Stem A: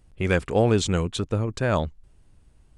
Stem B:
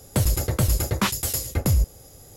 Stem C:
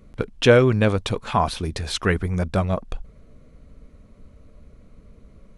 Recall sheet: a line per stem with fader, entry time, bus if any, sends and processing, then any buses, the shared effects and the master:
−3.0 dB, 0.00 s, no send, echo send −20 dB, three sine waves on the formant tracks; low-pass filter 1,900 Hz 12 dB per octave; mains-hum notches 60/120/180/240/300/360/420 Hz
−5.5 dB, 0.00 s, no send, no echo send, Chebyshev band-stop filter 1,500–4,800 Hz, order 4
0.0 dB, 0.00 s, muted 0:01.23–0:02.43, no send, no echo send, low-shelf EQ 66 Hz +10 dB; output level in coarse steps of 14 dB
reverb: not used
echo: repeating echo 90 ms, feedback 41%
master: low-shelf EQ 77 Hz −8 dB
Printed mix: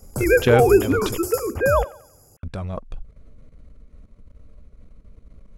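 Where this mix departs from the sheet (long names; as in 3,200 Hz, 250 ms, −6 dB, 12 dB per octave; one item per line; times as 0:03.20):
stem A −3.0 dB → +5.0 dB
master: missing low-shelf EQ 77 Hz −8 dB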